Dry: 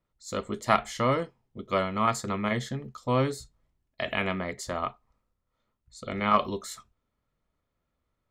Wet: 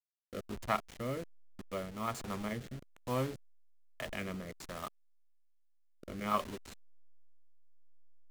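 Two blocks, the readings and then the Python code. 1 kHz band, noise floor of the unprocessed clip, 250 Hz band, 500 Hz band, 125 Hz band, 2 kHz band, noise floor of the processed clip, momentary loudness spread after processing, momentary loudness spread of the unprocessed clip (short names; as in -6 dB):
-11.0 dB, -81 dBFS, -9.5 dB, -10.5 dB, -9.5 dB, -11.5 dB, -67 dBFS, 15 LU, 13 LU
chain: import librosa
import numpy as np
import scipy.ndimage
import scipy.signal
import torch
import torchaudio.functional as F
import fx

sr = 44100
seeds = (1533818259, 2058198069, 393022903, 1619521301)

y = fx.delta_hold(x, sr, step_db=-30.5)
y = fx.rotary(y, sr, hz=1.2)
y = F.gain(torch.from_numpy(y), -8.0).numpy()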